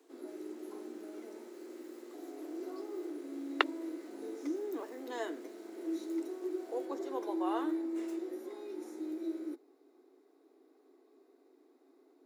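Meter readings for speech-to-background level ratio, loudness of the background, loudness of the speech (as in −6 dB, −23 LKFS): 6.0 dB, −40.5 LKFS, −34.5 LKFS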